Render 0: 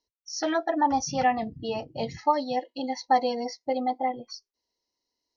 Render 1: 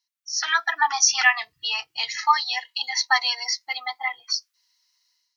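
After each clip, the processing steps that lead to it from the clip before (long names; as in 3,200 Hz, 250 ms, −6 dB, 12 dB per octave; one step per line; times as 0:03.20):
inverse Chebyshev high-pass filter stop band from 610 Hz, stop band 40 dB
automatic gain control gain up to 12 dB
level +4 dB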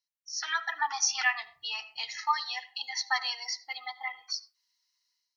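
convolution reverb RT60 0.40 s, pre-delay 35 ms, DRR 15 dB
level −9 dB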